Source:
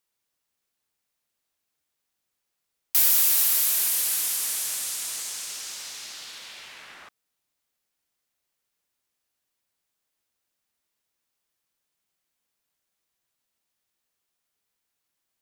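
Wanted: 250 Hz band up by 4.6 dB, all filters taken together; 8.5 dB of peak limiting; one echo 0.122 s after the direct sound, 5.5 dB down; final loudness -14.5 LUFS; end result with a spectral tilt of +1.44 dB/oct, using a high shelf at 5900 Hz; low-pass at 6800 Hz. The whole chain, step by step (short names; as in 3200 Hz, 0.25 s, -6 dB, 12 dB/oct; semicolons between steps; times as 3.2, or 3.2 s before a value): LPF 6800 Hz; bell 250 Hz +6 dB; high shelf 5900 Hz +6 dB; limiter -22.5 dBFS; echo 0.122 s -5.5 dB; gain +16 dB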